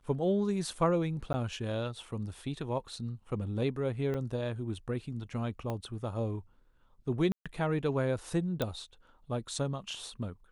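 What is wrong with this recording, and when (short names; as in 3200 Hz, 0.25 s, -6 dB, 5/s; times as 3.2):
1.33–1.34 gap 10 ms
4.14–4.15 gap 6.1 ms
5.7 pop -23 dBFS
7.32–7.46 gap 0.136 s
8.62 pop -17 dBFS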